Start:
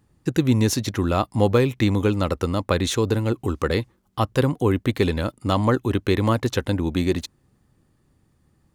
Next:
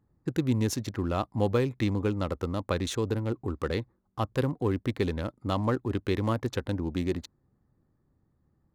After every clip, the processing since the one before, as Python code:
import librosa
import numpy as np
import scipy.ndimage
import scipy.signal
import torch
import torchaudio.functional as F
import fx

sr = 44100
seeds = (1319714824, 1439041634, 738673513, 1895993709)

y = fx.wiener(x, sr, points=15)
y = y * librosa.db_to_amplitude(-7.5)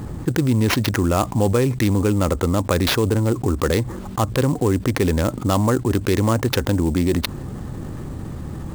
y = fx.sample_hold(x, sr, seeds[0], rate_hz=8200.0, jitter_pct=20)
y = fx.env_flatten(y, sr, amount_pct=70)
y = y * librosa.db_to_amplitude(6.0)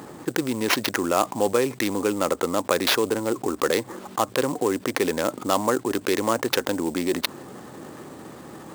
y = scipy.signal.sosfilt(scipy.signal.butter(2, 360.0, 'highpass', fs=sr, output='sos'), x)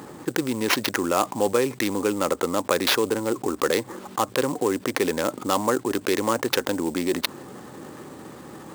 y = fx.notch(x, sr, hz=670.0, q=12.0)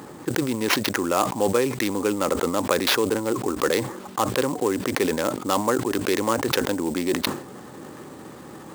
y = fx.sustainer(x, sr, db_per_s=98.0)